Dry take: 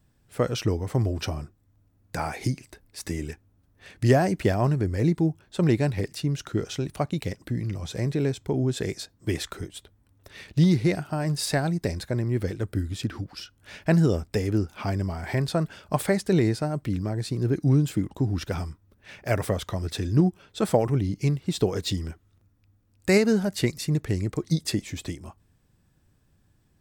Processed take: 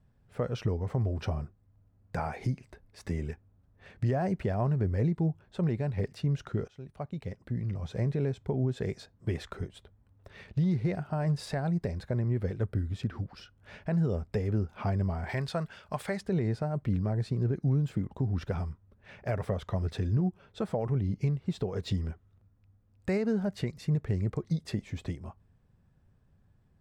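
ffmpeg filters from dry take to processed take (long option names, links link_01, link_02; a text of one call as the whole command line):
ffmpeg -i in.wav -filter_complex "[0:a]asettb=1/sr,asplit=3[link_01][link_02][link_03];[link_01]atrim=end=15.294[link_04];[link_02]atrim=start=15.29:end=16.21,asetpts=PTS-STARTPTS,afade=type=in:duration=0.004:curve=qsin,afade=type=out:start_time=0.916:duration=0.004:curve=qsin,tiltshelf=frequency=1100:gain=-6.5[link_05];[link_03]atrim=start=16.206[link_06];[link_04][link_05]acrossfade=duration=0.004:curve1=hsin:curve2=qsin[link_07];[link_07][link_06]acrossfade=duration=0.004:curve1=qsin:curve2=hsin,asplit=2[link_08][link_09];[link_08]atrim=end=6.68,asetpts=PTS-STARTPTS,afade=type=out:start_time=6.676:duration=0.004:curve=hsin:silence=0.112202[link_10];[link_09]atrim=start=6.68,asetpts=PTS-STARTPTS,afade=type=in:duration=1.43:silence=0.112202[link_11];[link_10][link_11]concat=n=2:v=0:a=1,lowpass=frequency=1100:poles=1,equalizer=frequency=310:width=5:gain=-11.5,alimiter=limit=-20.5dB:level=0:latency=1:release=251" out.wav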